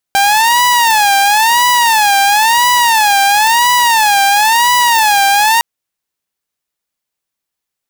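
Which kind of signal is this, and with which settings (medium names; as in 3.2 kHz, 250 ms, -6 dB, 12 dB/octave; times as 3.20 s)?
siren wail 792–983 Hz 0.98 per s saw -5 dBFS 5.46 s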